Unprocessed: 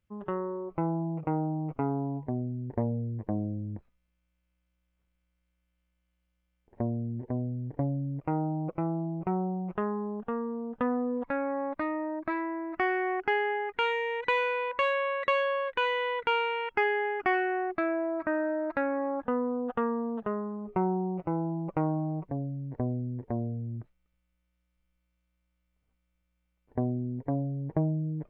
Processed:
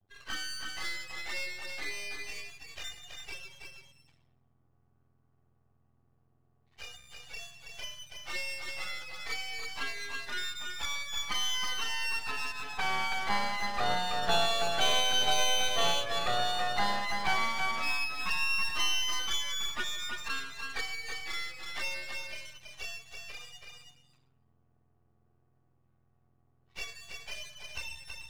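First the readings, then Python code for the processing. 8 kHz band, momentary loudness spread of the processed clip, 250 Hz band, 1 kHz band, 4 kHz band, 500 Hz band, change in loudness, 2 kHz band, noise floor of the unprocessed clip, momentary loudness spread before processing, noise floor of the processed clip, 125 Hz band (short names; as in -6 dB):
n/a, 17 LU, -19.5 dB, -2.5 dB, +13.5 dB, -10.0 dB, -1.5 dB, +0.5 dB, -78 dBFS, 7 LU, -70 dBFS, -18.0 dB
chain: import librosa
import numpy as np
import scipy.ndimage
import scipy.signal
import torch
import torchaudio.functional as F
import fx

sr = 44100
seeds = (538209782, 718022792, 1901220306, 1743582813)

p1 = fx.octave_mirror(x, sr, pivot_hz=1300.0)
p2 = fx.high_shelf(p1, sr, hz=2100.0, db=-4.0)
p3 = fx.room_shoebox(p2, sr, seeds[0], volume_m3=3900.0, walls='furnished', distance_m=3.6)
p4 = np.clip(p3, -10.0 ** (-28.5 / 20.0), 10.0 ** (-28.5 / 20.0))
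p5 = p3 + (p4 * librosa.db_to_amplitude(-8.0))
p6 = fx.low_shelf(p5, sr, hz=380.0, db=7.5)
p7 = fx.env_flanger(p6, sr, rest_ms=2.8, full_db=-24.0)
p8 = scipy.signal.sosfilt(scipy.signal.butter(4, 3600.0, 'lowpass', fs=sr, output='sos'), p7)
p9 = np.maximum(p8, 0.0)
p10 = p9 + fx.echo_single(p9, sr, ms=327, db=-5.0, dry=0)
y = p10 * librosa.db_to_amplitude(3.5)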